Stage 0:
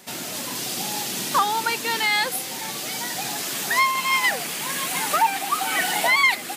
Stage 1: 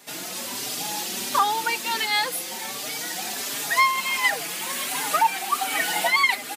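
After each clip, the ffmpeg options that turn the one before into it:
-filter_complex "[0:a]highpass=f=230:p=1,asplit=2[a][b];[b]adelay=4.5,afreqshift=1.4[c];[a][c]amix=inputs=2:normalize=1,volume=1.5dB"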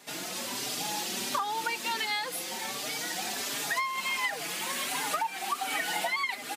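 -af "highshelf=f=9.7k:g=-7,acompressor=threshold=-25dB:ratio=12,volume=-2dB"

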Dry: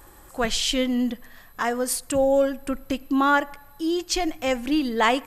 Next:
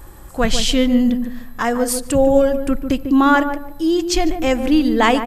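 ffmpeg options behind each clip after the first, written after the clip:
-filter_complex "[0:a]lowshelf=f=240:g=10,asplit=2[a][b];[b]adelay=147,lowpass=f=830:p=1,volume=-6.5dB,asplit=2[c][d];[d]adelay=147,lowpass=f=830:p=1,volume=0.3,asplit=2[e][f];[f]adelay=147,lowpass=f=830:p=1,volume=0.3,asplit=2[g][h];[h]adelay=147,lowpass=f=830:p=1,volume=0.3[i];[c][e][g][i]amix=inputs=4:normalize=0[j];[a][j]amix=inputs=2:normalize=0,volume=4dB"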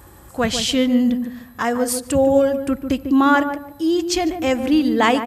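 -af "highpass=f=58:w=0.5412,highpass=f=58:w=1.3066,volume=-1.5dB"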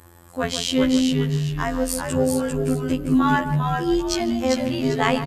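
-filter_complex "[0:a]afftfilt=real='hypot(re,im)*cos(PI*b)':imag='0':win_size=2048:overlap=0.75,asplit=5[a][b][c][d][e];[b]adelay=397,afreqshift=-110,volume=-4dB[f];[c]adelay=794,afreqshift=-220,volume=-13.9dB[g];[d]adelay=1191,afreqshift=-330,volume=-23.8dB[h];[e]adelay=1588,afreqshift=-440,volume=-33.7dB[i];[a][f][g][h][i]amix=inputs=5:normalize=0,volume=-1dB"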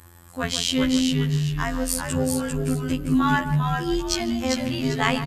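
-af "equalizer=f=490:t=o:w=1.9:g=-7.5,volume=1.5dB"

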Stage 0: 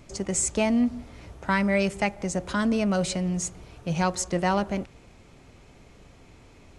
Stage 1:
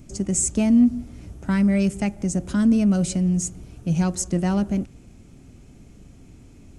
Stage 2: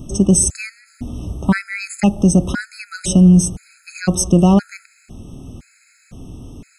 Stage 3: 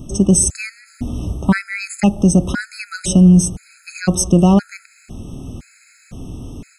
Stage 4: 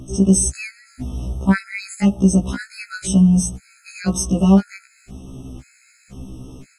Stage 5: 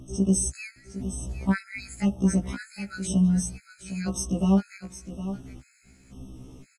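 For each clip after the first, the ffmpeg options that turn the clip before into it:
-af "equalizer=f=250:t=o:w=1:g=4,equalizer=f=500:t=o:w=1:g=-8,equalizer=f=1k:t=o:w=1:g=-11,equalizer=f=2k:t=o:w=1:g=-8,equalizer=f=4k:t=o:w=1:g=-9,acontrast=88,volume=-1.5dB"
-af "alimiter=level_in=13.5dB:limit=-1dB:release=50:level=0:latency=1,afftfilt=real='re*gt(sin(2*PI*0.98*pts/sr)*(1-2*mod(floor(b*sr/1024/1300),2)),0)':imag='im*gt(sin(2*PI*0.98*pts/sr)*(1-2*mod(floor(b*sr/1024/1300),2)),0)':win_size=1024:overlap=0.75,volume=-1dB"
-af "dynaudnorm=f=160:g=3:m=4dB"
-af "afftfilt=real='re*1.73*eq(mod(b,3),0)':imag='im*1.73*eq(mod(b,3),0)':win_size=2048:overlap=0.75,volume=-1.5dB"
-af "aecho=1:1:761:0.251,volume=-8.5dB"

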